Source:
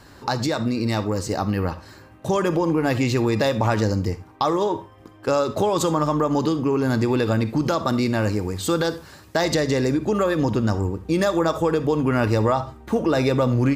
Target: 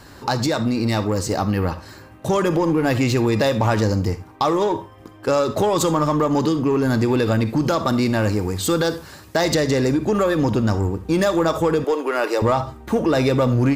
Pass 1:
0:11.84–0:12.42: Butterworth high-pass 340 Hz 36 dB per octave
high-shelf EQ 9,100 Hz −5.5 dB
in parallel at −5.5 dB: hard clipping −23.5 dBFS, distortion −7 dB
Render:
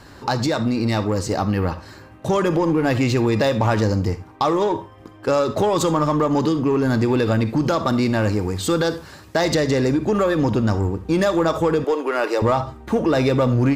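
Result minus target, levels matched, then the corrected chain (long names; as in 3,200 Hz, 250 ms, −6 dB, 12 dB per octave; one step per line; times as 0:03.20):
8,000 Hz band −3.0 dB
0:11.84–0:12.42: Butterworth high-pass 340 Hz 36 dB per octave
high-shelf EQ 9,100 Hz +3.5 dB
in parallel at −5.5 dB: hard clipping −23.5 dBFS, distortion −7 dB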